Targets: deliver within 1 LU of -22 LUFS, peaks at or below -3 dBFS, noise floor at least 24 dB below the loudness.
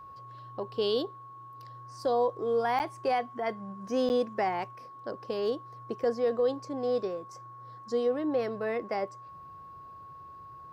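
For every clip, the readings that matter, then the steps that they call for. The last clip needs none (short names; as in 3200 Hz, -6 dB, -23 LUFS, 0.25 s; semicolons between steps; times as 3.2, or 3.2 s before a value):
dropouts 2; longest dropout 9.4 ms; steady tone 1100 Hz; tone level -45 dBFS; loudness -31.0 LUFS; peak -18.5 dBFS; loudness target -22.0 LUFS
-> interpolate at 2.79/4.09, 9.4 ms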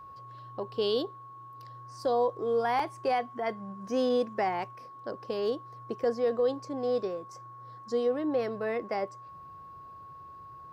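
dropouts 0; steady tone 1100 Hz; tone level -45 dBFS
-> notch 1100 Hz, Q 30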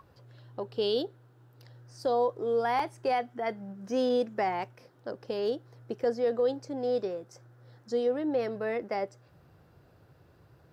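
steady tone none; loudness -31.0 LUFS; peak -16.0 dBFS; loudness target -22.0 LUFS
-> gain +9 dB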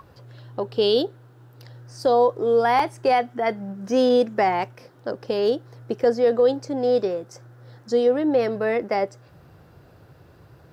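loudness -22.0 LUFS; peak -7.0 dBFS; noise floor -52 dBFS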